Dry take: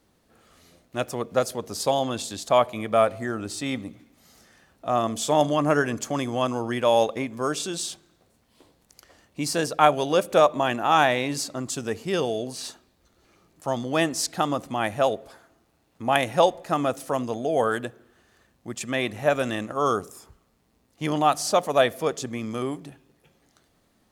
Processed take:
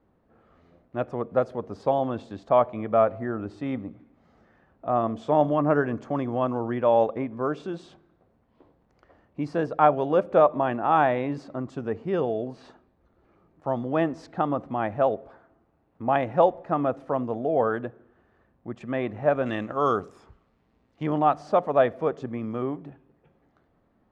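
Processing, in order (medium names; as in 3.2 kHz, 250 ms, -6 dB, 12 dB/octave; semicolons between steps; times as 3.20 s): low-pass 1.3 kHz 12 dB/octave, from 19.46 s 2.6 kHz, from 21.03 s 1.4 kHz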